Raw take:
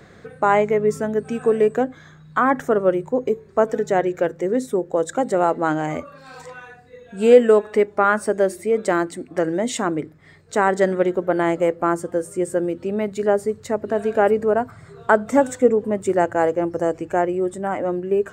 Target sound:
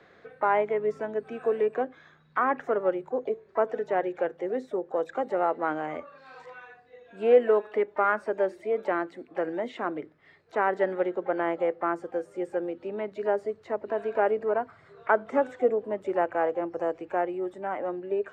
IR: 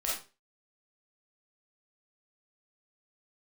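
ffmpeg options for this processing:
-filter_complex "[0:a]asplit=2[s0][s1];[s1]asetrate=66075,aresample=44100,atempo=0.66742,volume=0.126[s2];[s0][s2]amix=inputs=2:normalize=0,acrossover=split=320 4800:gain=0.224 1 0.0708[s3][s4][s5];[s3][s4][s5]amix=inputs=3:normalize=0,acrossover=split=2900[s6][s7];[s7]acompressor=threshold=0.002:ratio=4:attack=1:release=60[s8];[s6][s8]amix=inputs=2:normalize=0,volume=0.473"

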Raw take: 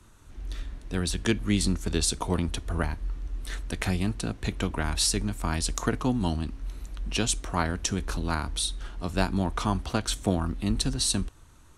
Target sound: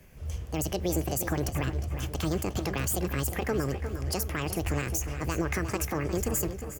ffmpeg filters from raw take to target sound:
-filter_complex "[0:a]equalizer=f=2300:t=o:w=0.28:g=-7.5,alimiter=limit=0.119:level=0:latency=1:release=95,asplit=2[s0][s1];[s1]aecho=0:1:642:0.168[s2];[s0][s2]amix=inputs=2:normalize=0,asetrate=76440,aresample=44100,asplit=2[s3][s4];[s4]adelay=355,lowpass=f=3200:p=1,volume=0.335,asplit=2[s5][s6];[s6]adelay=355,lowpass=f=3200:p=1,volume=0.53,asplit=2[s7][s8];[s8]adelay=355,lowpass=f=3200:p=1,volume=0.53,asplit=2[s9][s10];[s10]adelay=355,lowpass=f=3200:p=1,volume=0.53,asplit=2[s11][s12];[s12]adelay=355,lowpass=f=3200:p=1,volume=0.53,asplit=2[s13][s14];[s14]adelay=355,lowpass=f=3200:p=1,volume=0.53[s15];[s5][s7][s9][s11][s13][s15]amix=inputs=6:normalize=0[s16];[s3][s16]amix=inputs=2:normalize=0"

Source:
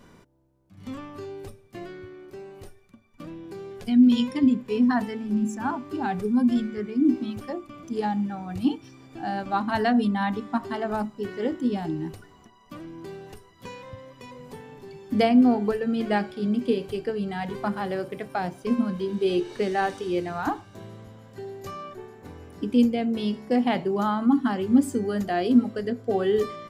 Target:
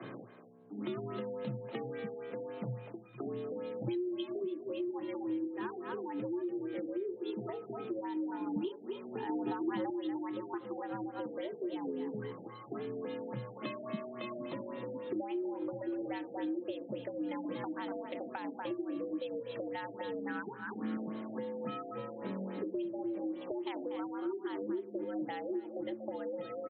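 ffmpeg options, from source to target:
-filter_complex "[0:a]asplit=2[s0][s1];[s1]adelay=240,highpass=300,lowpass=3400,asoftclip=type=hard:threshold=0.141,volume=0.316[s2];[s0][s2]amix=inputs=2:normalize=0,afreqshift=110,asettb=1/sr,asplit=3[s3][s4][s5];[s3]atrim=end=20.144[s6];[s4]atrim=start=20.14:end=20.97,asetpts=PTS-STARTPTS,afade=t=in:d=0.004:c=qsin,afade=t=out:st=0.826:d=0.004:c=qsin,equalizer=f=250:t=o:w=0.67:g=6,equalizer=f=630:t=o:w=0.67:g=-6,equalizer=f=1600:t=o:w=0.67:g=11,equalizer=f=4000:t=o:w=0.67:g=-4[s7];[s5]atrim=start=20.966[s8];[s6][s7]acrossfade=d=0.004:c1=hsin:c2=qsin[s9];[s9][s8]acrossfade=d=0.004:c1=qsin:c2=hsin,acompressor=threshold=0.02:ratio=6,asettb=1/sr,asplit=3[s10][s11][s12];[s10]atrim=end=9.294[s13];[s11]atrim=start=9.29:end=9.9,asetpts=PTS-STARTPTS,afade=t=in:d=0.004:c=qsin,afade=t=out:st=0.606:d=0.004:c=qsin,equalizer=f=380:w=0.6:g=8.5[s14];[s12]atrim=start=9.896[s15];[s13][s14]acrossfade=d=0.004:c1=hsin:c2=qsin[s16];[s16][s15]acrossfade=d=0.004:c1=qsin:c2=hsin,acrossover=split=240|3000[s17][s18][s19];[s18]acompressor=threshold=0.00355:ratio=4[s20];[s17][s20][s19]amix=inputs=3:normalize=0,afftfilt=real='re*lt(b*sr/1024,800*pow(4300/800,0.5+0.5*sin(2*PI*3.6*pts/sr)))':imag='im*lt(b*sr/1024,800*pow(4300/800,0.5+0.5*sin(2*PI*3.6*pts/sr)))':win_size=1024:overlap=0.75,volume=2.24"

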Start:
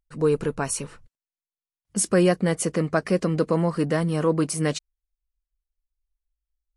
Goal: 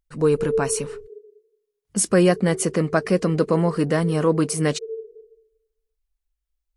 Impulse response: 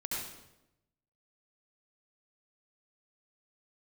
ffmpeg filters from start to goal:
-filter_complex "[0:a]asplit=2[s0][s1];[s1]asuperpass=centerf=420:order=20:qfactor=4.6[s2];[1:a]atrim=start_sample=2205,adelay=135[s3];[s2][s3]afir=irnorm=-1:irlink=0,volume=0.631[s4];[s0][s4]amix=inputs=2:normalize=0,volume=1.33"

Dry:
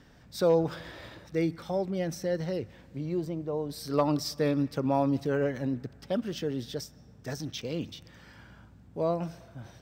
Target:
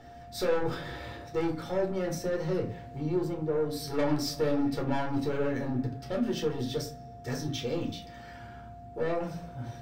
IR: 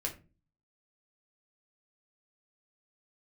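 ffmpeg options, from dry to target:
-filter_complex "[0:a]aeval=exprs='val(0)+0.00501*sin(2*PI*700*n/s)':c=same,asoftclip=type=tanh:threshold=0.0376[s0];[1:a]atrim=start_sample=2205,asetrate=34839,aresample=44100[s1];[s0][s1]afir=irnorm=-1:irlink=0"

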